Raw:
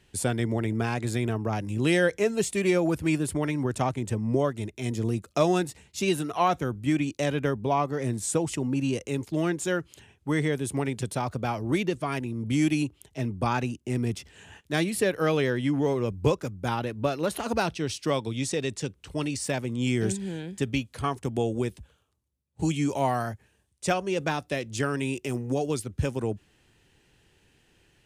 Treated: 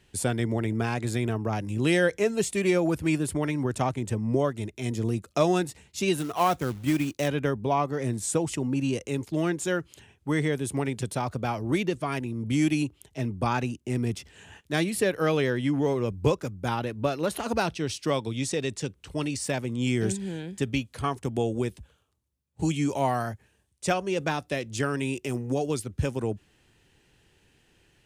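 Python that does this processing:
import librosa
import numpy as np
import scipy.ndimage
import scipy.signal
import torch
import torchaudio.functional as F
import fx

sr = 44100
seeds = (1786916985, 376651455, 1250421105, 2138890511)

y = fx.quant_float(x, sr, bits=2, at=(6.18, 7.28))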